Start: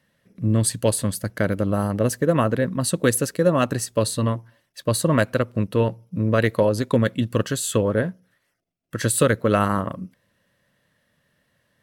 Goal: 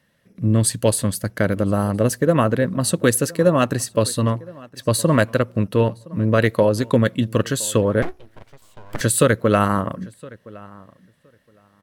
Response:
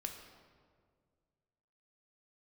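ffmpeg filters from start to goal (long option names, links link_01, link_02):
-filter_complex "[0:a]asplit=2[link_01][link_02];[link_02]adelay=1016,lowpass=frequency=2900:poles=1,volume=-22dB,asplit=2[link_03][link_04];[link_04]adelay=1016,lowpass=frequency=2900:poles=1,volume=0.15[link_05];[link_03][link_05]amix=inputs=2:normalize=0[link_06];[link_01][link_06]amix=inputs=2:normalize=0,asettb=1/sr,asplit=3[link_07][link_08][link_09];[link_07]atrim=end=8.024[link_10];[link_08]atrim=start=8.02:end=9.01,asetpts=PTS-STARTPTS,afade=type=in:duration=0.004:curve=qsin,afade=type=out:start_time=0.986:duration=0.004:curve=qsin,aeval=exprs='abs(val(0))':channel_layout=same[link_11];[link_09]atrim=start=9.006[link_12];[link_10][link_11]acrossfade=duration=0.004:curve1=hsin:curve2=qsin[link_13];[link_13][link_12]acrossfade=duration=0.004:curve1=qsin:curve2=hsin,volume=2.5dB"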